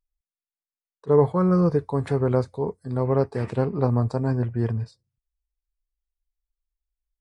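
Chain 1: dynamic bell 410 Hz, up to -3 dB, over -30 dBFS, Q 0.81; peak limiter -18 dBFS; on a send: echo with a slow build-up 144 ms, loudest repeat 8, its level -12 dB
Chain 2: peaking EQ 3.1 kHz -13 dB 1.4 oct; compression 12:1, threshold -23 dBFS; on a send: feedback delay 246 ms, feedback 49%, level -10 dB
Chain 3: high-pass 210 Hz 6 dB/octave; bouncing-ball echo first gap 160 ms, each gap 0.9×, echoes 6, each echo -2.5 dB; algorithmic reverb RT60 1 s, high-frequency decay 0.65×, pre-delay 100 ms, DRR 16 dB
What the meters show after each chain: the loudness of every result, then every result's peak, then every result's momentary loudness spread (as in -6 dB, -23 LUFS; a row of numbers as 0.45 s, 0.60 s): -27.5 LUFS, -29.0 LUFS, -22.5 LUFS; -13.0 dBFS, -14.0 dBFS, -6.5 dBFS; 7 LU, 13 LU, 14 LU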